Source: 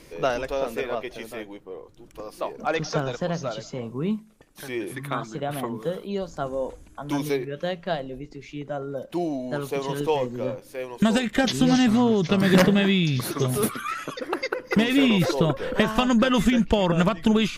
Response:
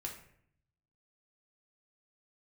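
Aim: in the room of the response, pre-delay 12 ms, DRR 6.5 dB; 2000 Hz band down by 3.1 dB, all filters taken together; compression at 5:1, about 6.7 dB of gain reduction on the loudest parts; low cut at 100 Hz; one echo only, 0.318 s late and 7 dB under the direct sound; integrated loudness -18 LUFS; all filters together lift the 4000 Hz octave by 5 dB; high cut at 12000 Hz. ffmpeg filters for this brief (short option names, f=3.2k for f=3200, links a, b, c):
-filter_complex "[0:a]highpass=100,lowpass=12k,equalizer=f=2k:t=o:g=-7,equalizer=f=4k:t=o:g=9,acompressor=threshold=-22dB:ratio=5,aecho=1:1:318:0.447,asplit=2[a][b];[1:a]atrim=start_sample=2205,adelay=12[c];[b][c]afir=irnorm=-1:irlink=0,volume=-5dB[d];[a][d]amix=inputs=2:normalize=0,volume=9dB"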